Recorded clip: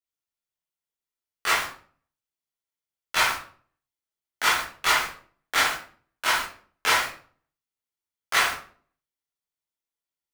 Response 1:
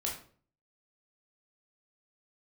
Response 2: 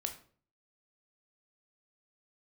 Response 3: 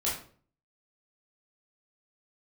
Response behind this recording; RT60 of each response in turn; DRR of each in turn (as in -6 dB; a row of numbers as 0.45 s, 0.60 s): 3; 0.45 s, 0.45 s, 0.45 s; -2.5 dB, 5.0 dB, -7.0 dB